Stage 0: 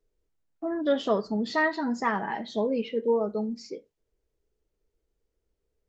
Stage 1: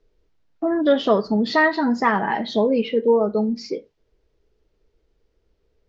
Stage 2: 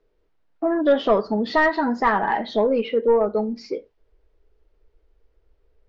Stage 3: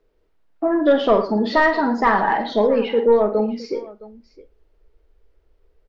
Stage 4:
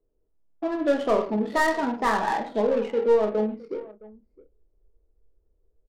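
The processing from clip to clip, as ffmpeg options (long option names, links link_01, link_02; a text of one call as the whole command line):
ffmpeg -i in.wav -filter_complex "[0:a]lowpass=frequency=5400:width=0.5412,lowpass=frequency=5400:width=1.3066,asplit=2[link_01][link_02];[link_02]acompressor=threshold=-34dB:ratio=6,volume=0.5dB[link_03];[link_01][link_03]amix=inputs=2:normalize=0,volume=5.5dB" out.wav
ffmpeg -i in.wav -filter_complex "[0:a]asplit=2[link_01][link_02];[link_02]highpass=frequency=720:poles=1,volume=10dB,asoftclip=type=tanh:threshold=-5.5dB[link_03];[link_01][link_03]amix=inputs=2:normalize=0,lowpass=frequency=1200:poles=1,volume=-6dB,asubboost=boost=5:cutoff=71" out.wav
ffmpeg -i in.wav -af "aecho=1:1:47|111|663:0.376|0.188|0.106,volume=2dB" out.wav
ffmpeg -i in.wav -filter_complex "[0:a]asplit=2[link_01][link_02];[link_02]adelay=28,volume=-7.5dB[link_03];[link_01][link_03]amix=inputs=2:normalize=0,adynamicsmooth=sensitivity=2:basefreq=660,volume=-7dB" out.wav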